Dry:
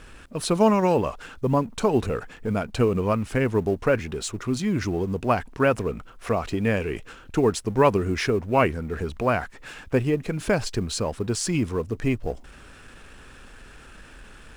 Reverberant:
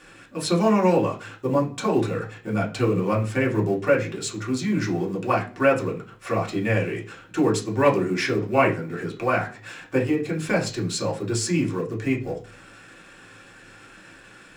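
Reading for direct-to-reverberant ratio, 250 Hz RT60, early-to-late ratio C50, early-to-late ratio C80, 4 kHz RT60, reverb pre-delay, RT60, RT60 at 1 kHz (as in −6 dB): −3.5 dB, 0.50 s, 12.0 dB, 18.0 dB, 0.40 s, 3 ms, 0.40 s, 0.35 s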